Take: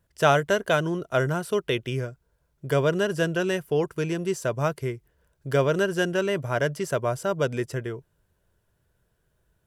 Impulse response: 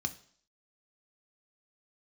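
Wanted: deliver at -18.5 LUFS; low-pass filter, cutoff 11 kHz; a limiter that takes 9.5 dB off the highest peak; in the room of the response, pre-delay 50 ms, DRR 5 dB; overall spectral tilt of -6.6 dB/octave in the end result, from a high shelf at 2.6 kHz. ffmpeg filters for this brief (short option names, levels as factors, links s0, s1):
-filter_complex "[0:a]lowpass=11000,highshelf=f=2600:g=-8,alimiter=limit=0.15:level=0:latency=1,asplit=2[s0][s1];[1:a]atrim=start_sample=2205,adelay=50[s2];[s1][s2]afir=irnorm=-1:irlink=0,volume=0.447[s3];[s0][s3]amix=inputs=2:normalize=0,volume=2.51"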